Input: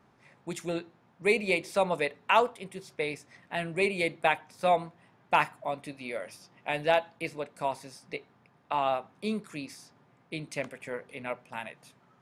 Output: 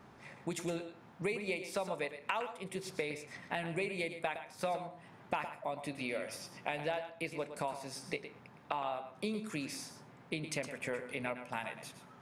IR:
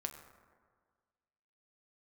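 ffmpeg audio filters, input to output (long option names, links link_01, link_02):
-filter_complex "[0:a]acompressor=threshold=-41dB:ratio=6,asplit=2[link_01][link_02];[1:a]atrim=start_sample=2205,atrim=end_sample=6174,adelay=113[link_03];[link_02][link_03]afir=irnorm=-1:irlink=0,volume=-8.5dB[link_04];[link_01][link_04]amix=inputs=2:normalize=0,volume=6dB"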